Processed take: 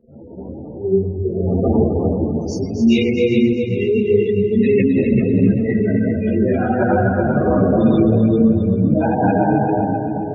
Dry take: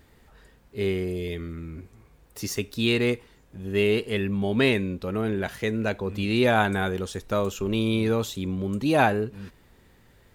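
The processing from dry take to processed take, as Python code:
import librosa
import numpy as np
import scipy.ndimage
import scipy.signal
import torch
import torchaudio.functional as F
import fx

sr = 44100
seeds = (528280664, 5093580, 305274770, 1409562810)

p1 = fx.bin_expand(x, sr, power=2.0)
p2 = fx.dmg_wind(p1, sr, seeds[0], corner_hz=470.0, level_db=-38.0)
p3 = fx.high_shelf(p2, sr, hz=11000.0, db=-8.5)
p4 = fx.room_shoebox(p3, sr, seeds[1], volume_m3=120.0, walls='hard', distance_m=1.6)
p5 = fx.over_compress(p4, sr, threshold_db=-15.0, ratio=-1.0)
p6 = fx.spec_gate(p5, sr, threshold_db=-15, keep='strong')
p7 = scipy.signal.sosfilt(scipy.signal.butter(2, 120.0, 'highpass', fs=sr, output='sos'), p6)
p8 = fx.low_shelf(p7, sr, hz=420.0, db=7.0)
p9 = p8 + fx.echo_heads(p8, sr, ms=131, heads='second and third', feedback_pct=45, wet_db=-7.0, dry=0)
y = fx.ensemble(p9, sr)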